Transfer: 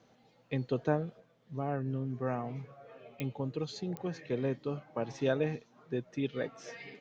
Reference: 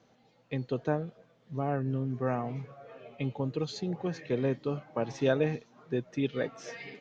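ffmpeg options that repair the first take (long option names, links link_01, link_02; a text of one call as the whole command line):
ffmpeg -i in.wav -af "adeclick=threshold=4,asetnsamples=nb_out_samples=441:pad=0,asendcmd='1.2 volume volume 3.5dB',volume=0dB" out.wav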